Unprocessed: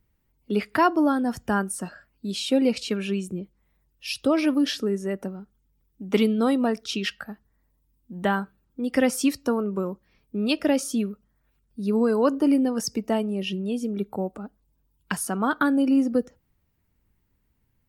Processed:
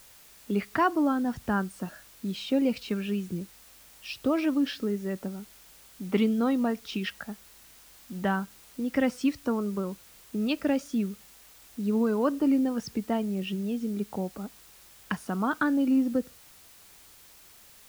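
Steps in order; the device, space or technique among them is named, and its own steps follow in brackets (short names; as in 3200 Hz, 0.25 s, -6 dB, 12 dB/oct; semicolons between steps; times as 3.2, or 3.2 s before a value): cassette deck with a dirty head (tape spacing loss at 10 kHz 21 dB; wow and flutter; white noise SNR 27 dB); dynamic EQ 470 Hz, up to -5 dB, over -35 dBFS, Q 0.73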